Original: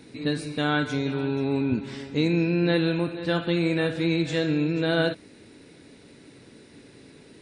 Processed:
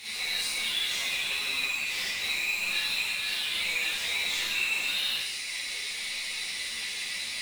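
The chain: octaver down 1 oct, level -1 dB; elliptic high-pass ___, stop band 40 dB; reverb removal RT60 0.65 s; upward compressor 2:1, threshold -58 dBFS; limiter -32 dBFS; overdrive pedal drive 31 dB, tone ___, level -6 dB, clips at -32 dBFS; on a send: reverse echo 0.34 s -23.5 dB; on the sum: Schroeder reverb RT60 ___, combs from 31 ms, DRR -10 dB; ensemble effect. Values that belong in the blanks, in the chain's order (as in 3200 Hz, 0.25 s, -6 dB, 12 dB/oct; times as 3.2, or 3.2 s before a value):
2000 Hz, 7800 Hz, 1.2 s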